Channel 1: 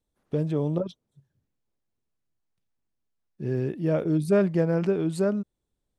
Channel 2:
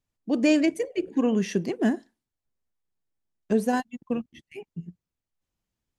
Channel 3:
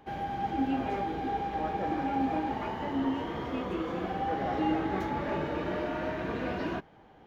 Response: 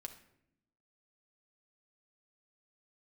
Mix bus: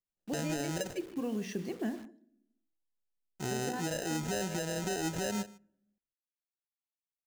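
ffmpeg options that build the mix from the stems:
-filter_complex "[0:a]lowshelf=frequency=270:gain=-11,acrusher=samples=39:mix=1:aa=0.000001,equalizer=frequency=6700:width=1.9:gain=10.5,volume=1.5dB,asplit=3[link_01][link_02][link_03];[link_02]volume=-16.5dB[link_04];[link_03]volume=-22dB[link_05];[1:a]bandreject=frequency=63.47:width_type=h:width=4,bandreject=frequency=126.94:width_type=h:width=4,bandreject=frequency=190.41:width_type=h:width=4,bandreject=frequency=253.88:width_type=h:width=4,bandreject=frequency=317.35:width_type=h:width=4,bandreject=frequency=380.82:width_type=h:width=4,bandreject=frequency=444.29:width_type=h:width=4,bandreject=frequency=507.76:width_type=h:width=4,bandreject=frequency=571.23:width_type=h:width=4,bandreject=frequency=634.7:width_type=h:width=4,bandreject=frequency=698.17:width_type=h:width=4,acompressor=threshold=-22dB:ratio=6,volume=-11.5dB,asplit=3[link_06][link_07][link_08];[link_07]volume=-3dB[link_09];[link_08]volume=-14dB[link_10];[link_01][link_06]amix=inputs=2:normalize=0,acrusher=bits=8:mix=0:aa=0.000001,acompressor=threshold=-24dB:ratio=6,volume=0dB[link_11];[3:a]atrim=start_sample=2205[link_12];[link_04][link_09]amix=inputs=2:normalize=0[link_13];[link_13][link_12]afir=irnorm=-1:irlink=0[link_14];[link_05][link_10]amix=inputs=2:normalize=0,aecho=0:1:151:1[link_15];[link_11][link_14][link_15]amix=inputs=3:normalize=0,alimiter=level_in=0.5dB:limit=-24dB:level=0:latency=1:release=83,volume=-0.5dB"

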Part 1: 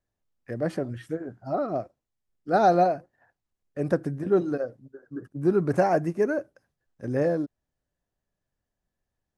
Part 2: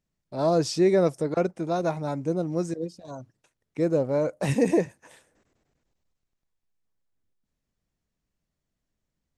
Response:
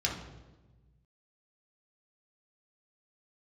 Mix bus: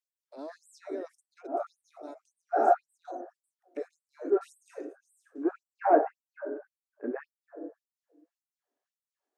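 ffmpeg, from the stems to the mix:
-filter_complex "[0:a]lowpass=frequency=1600:width=0.5412,lowpass=frequency=1600:width=1.3066,bandreject=frequency=520:width=12,volume=1dB,asplit=2[link_01][link_02];[link_02]volume=-10.5dB[link_03];[1:a]acrossover=split=290[link_04][link_05];[link_05]acompressor=threshold=-46dB:ratio=2[link_06];[link_04][link_06]amix=inputs=2:normalize=0,volume=-6.5dB,asplit=2[link_07][link_08];[link_08]apad=whole_len=413578[link_09];[link_01][link_09]sidechaincompress=threshold=-47dB:ratio=8:attack=16:release=286[link_10];[2:a]atrim=start_sample=2205[link_11];[link_03][link_11]afir=irnorm=-1:irlink=0[link_12];[link_10][link_07][link_12]amix=inputs=3:normalize=0,afftfilt=real='re*gte(b*sr/1024,230*pow(7800/230,0.5+0.5*sin(2*PI*1.8*pts/sr)))':imag='im*gte(b*sr/1024,230*pow(7800/230,0.5+0.5*sin(2*PI*1.8*pts/sr)))':win_size=1024:overlap=0.75"

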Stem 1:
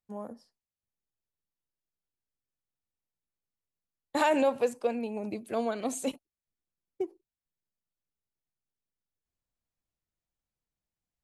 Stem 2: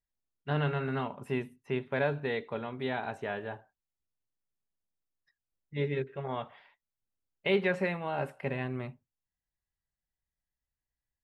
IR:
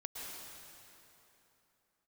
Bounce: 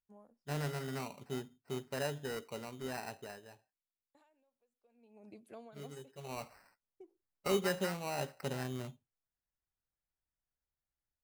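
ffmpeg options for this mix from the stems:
-filter_complex "[0:a]acompressor=threshold=-29dB:ratio=3,aeval=exprs='val(0)*pow(10,-33*(0.5-0.5*cos(2*PI*0.55*n/s))/20)':channel_layout=same,volume=-5dB[link_01];[1:a]lowpass=frequency=4000:poles=1,acrusher=samples=13:mix=1:aa=0.000001,volume=5dB,afade=type=out:start_time=3.08:duration=0.33:silence=0.334965,afade=type=in:start_time=6.08:duration=0.42:silence=0.237137,asplit=2[link_02][link_03];[link_03]apad=whole_len=495512[link_04];[link_01][link_04]sidechaingate=range=-11dB:threshold=-57dB:ratio=16:detection=peak[link_05];[link_05][link_02]amix=inputs=2:normalize=0"

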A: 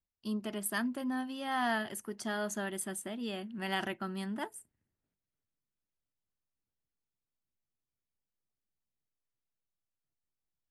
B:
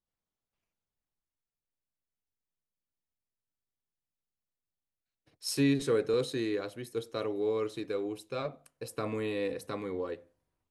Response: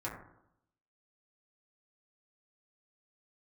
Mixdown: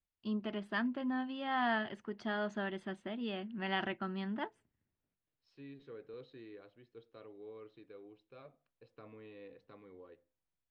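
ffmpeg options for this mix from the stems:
-filter_complex "[0:a]volume=-1dB,asplit=2[link_01][link_02];[1:a]volume=-19.5dB[link_03];[link_02]apad=whole_len=471932[link_04];[link_03][link_04]sidechaincompress=threshold=-51dB:ratio=8:attack=10:release=1390[link_05];[link_01][link_05]amix=inputs=2:normalize=0,lowpass=frequency=3700:width=0.5412,lowpass=frequency=3700:width=1.3066"

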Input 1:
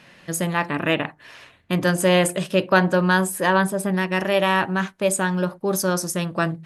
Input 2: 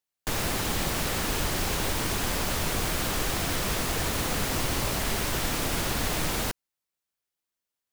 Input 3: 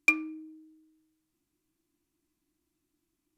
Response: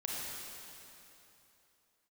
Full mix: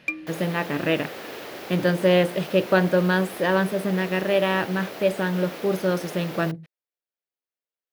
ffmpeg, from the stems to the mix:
-filter_complex "[0:a]deesser=0.5,volume=-2dB[link_01];[1:a]highpass=370,highshelf=frequency=2900:gain=-8,volume=-2.5dB[link_02];[2:a]volume=-3.5dB[link_03];[link_01][link_02][link_03]amix=inputs=3:normalize=0,equalizer=frequency=500:width_type=o:width=1:gain=4,equalizer=frequency=1000:width_type=o:width=1:gain=-6,equalizer=frequency=8000:width_type=o:width=1:gain=-10"

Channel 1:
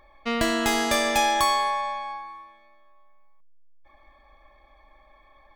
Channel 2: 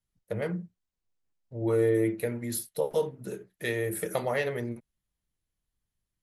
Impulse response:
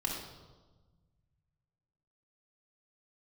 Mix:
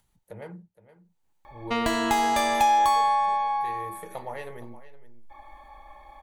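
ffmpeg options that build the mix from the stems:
-filter_complex "[0:a]adelay=1450,volume=3dB,asplit=2[link_01][link_02];[link_02]volume=-21dB[link_03];[1:a]acompressor=mode=upward:threshold=-42dB:ratio=2.5,volume=-10dB,asplit=2[link_04][link_05];[link_05]volume=-16dB[link_06];[2:a]atrim=start_sample=2205[link_07];[link_03][link_07]afir=irnorm=-1:irlink=0[link_08];[link_06]aecho=0:1:467:1[link_09];[link_01][link_04][link_08][link_09]amix=inputs=4:normalize=0,equalizer=frequency=870:width_type=o:width=0.35:gain=12,bandreject=frequency=5200:width=10,acompressor=threshold=-27dB:ratio=2"

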